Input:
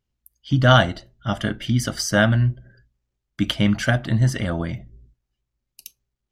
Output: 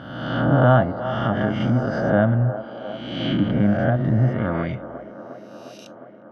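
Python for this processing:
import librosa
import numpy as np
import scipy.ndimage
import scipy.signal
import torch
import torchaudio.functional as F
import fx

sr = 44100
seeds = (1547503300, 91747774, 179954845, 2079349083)

y = fx.spec_swells(x, sr, rise_s=1.3)
y = fx.env_lowpass_down(y, sr, base_hz=870.0, full_db=-15.0)
y = scipy.signal.sosfilt(scipy.signal.butter(2, 97.0, 'highpass', fs=sr, output='sos'), y)
y = fx.env_lowpass(y, sr, base_hz=2900.0, full_db=-13.0)
y = fx.echo_wet_bandpass(y, sr, ms=356, feedback_pct=76, hz=650.0, wet_db=-11)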